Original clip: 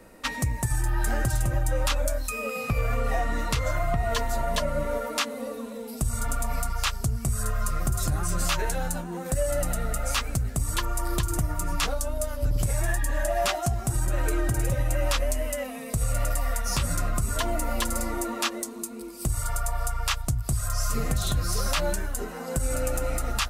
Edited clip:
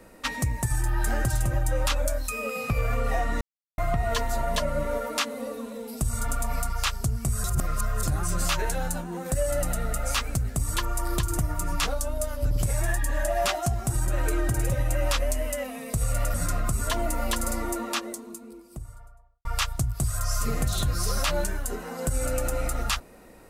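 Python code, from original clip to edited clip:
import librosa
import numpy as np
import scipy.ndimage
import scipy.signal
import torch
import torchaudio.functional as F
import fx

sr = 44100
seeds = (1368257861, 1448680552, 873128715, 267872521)

y = fx.studio_fade_out(x, sr, start_s=18.1, length_s=1.84)
y = fx.edit(y, sr, fx.silence(start_s=3.41, length_s=0.37),
    fx.reverse_span(start_s=7.44, length_s=0.59),
    fx.cut(start_s=16.34, length_s=0.49), tone=tone)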